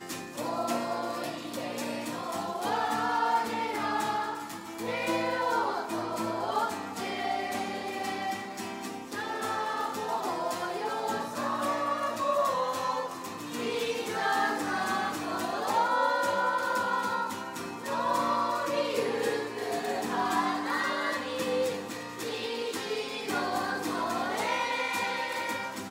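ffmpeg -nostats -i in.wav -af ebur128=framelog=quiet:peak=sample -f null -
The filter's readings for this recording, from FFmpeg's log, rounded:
Integrated loudness:
  I:         -30.8 LUFS
  Threshold: -40.8 LUFS
Loudness range:
  LRA:         4.3 LU
  Threshold: -50.7 LUFS
  LRA low:   -33.0 LUFS
  LRA high:  -28.7 LUFS
Sample peak:
  Peak:      -14.8 dBFS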